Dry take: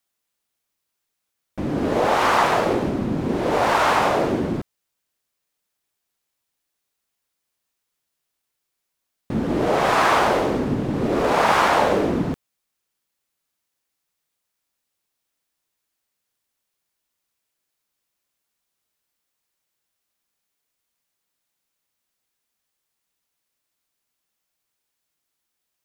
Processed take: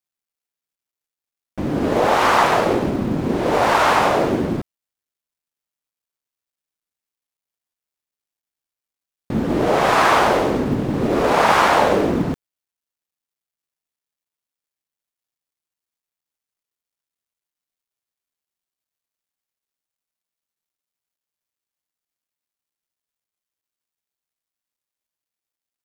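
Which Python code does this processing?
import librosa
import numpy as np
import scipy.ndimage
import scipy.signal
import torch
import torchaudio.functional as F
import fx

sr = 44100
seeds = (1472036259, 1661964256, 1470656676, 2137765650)

y = fx.law_mismatch(x, sr, coded='A')
y = y * 10.0 ** (3.0 / 20.0)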